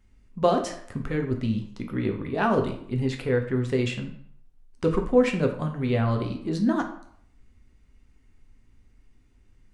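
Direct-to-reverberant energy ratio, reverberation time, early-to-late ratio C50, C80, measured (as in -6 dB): 3.5 dB, 0.65 s, 9.0 dB, 12.5 dB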